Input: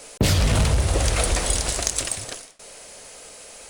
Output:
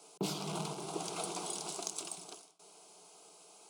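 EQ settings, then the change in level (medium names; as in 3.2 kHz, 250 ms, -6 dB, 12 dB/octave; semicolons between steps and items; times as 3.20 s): elliptic high-pass 170 Hz, stop band 50 dB; treble shelf 4.5 kHz -7.5 dB; static phaser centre 360 Hz, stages 8; -9.0 dB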